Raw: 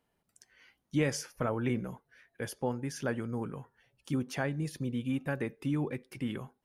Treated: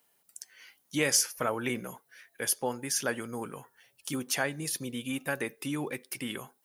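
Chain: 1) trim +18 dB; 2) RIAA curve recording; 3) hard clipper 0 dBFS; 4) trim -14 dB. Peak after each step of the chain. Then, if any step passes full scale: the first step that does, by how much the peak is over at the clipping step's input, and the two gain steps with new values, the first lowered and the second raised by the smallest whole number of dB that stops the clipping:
+0.5 dBFS, +3.5 dBFS, 0.0 dBFS, -14.0 dBFS; step 1, 3.5 dB; step 1 +14 dB, step 4 -10 dB

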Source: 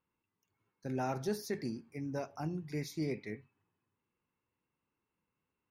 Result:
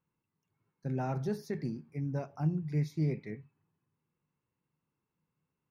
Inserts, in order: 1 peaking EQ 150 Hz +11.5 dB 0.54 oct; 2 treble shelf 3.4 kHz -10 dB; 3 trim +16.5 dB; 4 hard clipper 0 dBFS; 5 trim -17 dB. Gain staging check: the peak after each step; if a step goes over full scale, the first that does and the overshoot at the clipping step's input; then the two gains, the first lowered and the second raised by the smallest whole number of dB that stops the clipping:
-19.5 dBFS, -19.5 dBFS, -3.0 dBFS, -3.0 dBFS, -20.0 dBFS; nothing clips

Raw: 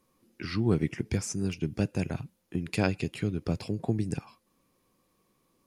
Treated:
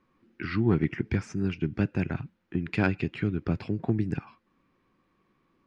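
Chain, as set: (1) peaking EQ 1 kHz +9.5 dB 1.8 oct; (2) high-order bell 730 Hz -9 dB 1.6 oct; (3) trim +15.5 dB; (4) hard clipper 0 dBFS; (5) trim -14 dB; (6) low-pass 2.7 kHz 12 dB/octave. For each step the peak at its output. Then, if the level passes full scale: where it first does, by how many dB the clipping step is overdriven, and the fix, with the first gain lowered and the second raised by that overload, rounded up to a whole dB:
-6.0 dBFS, -10.5 dBFS, +5.0 dBFS, 0.0 dBFS, -14.0 dBFS, -13.5 dBFS; step 3, 5.0 dB; step 3 +10.5 dB, step 5 -9 dB

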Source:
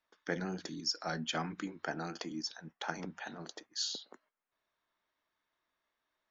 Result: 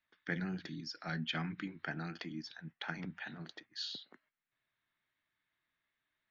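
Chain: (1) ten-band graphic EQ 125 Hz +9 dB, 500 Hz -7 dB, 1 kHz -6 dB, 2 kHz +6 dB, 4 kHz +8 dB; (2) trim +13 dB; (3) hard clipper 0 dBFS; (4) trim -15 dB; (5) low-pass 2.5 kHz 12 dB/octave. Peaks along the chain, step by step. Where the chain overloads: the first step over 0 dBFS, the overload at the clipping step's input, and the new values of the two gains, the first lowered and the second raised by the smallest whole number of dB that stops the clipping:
-16.0 dBFS, -3.0 dBFS, -3.0 dBFS, -18.0 dBFS, -20.5 dBFS; nothing clips

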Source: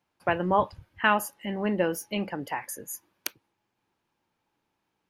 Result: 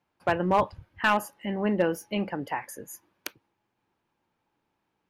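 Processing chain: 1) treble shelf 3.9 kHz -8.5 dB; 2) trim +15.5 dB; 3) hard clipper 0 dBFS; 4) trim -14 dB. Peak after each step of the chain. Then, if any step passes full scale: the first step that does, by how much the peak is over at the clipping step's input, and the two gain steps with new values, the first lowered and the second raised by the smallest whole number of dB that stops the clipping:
-8.5 dBFS, +7.0 dBFS, 0.0 dBFS, -14.0 dBFS; step 2, 7.0 dB; step 2 +8.5 dB, step 4 -7 dB

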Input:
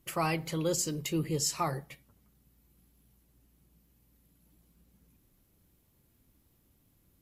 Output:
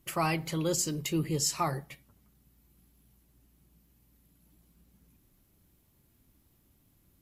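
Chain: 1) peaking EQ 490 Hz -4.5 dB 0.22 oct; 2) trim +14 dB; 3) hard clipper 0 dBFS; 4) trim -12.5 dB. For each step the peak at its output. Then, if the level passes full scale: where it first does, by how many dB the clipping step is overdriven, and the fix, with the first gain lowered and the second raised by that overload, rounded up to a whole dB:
-17.5 dBFS, -3.5 dBFS, -3.5 dBFS, -16.0 dBFS; nothing clips

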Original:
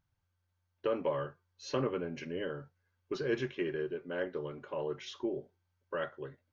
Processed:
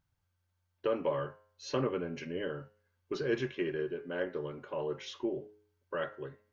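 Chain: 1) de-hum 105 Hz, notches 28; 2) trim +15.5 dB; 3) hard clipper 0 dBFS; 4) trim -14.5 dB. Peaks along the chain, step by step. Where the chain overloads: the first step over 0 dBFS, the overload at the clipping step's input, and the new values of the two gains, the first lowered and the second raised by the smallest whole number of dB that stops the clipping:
-21.0 dBFS, -5.5 dBFS, -5.5 dBFS, -20.0 dBFS; nothing clips

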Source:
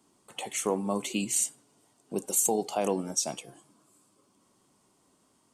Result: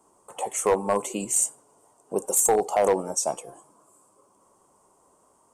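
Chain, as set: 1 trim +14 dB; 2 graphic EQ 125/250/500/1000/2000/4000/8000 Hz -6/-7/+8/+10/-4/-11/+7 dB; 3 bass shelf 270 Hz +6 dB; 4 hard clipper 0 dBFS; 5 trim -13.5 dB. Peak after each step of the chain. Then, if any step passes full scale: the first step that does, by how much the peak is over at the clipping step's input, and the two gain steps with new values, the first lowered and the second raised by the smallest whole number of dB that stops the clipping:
+2.0 dBFS, +6.0 dBFS, +6.5 dBFS, 0.0 dBFS, -13.5 dBFS; step 1, 6.5 dB; step 1 +7 dB, step 5 -6.5 dB

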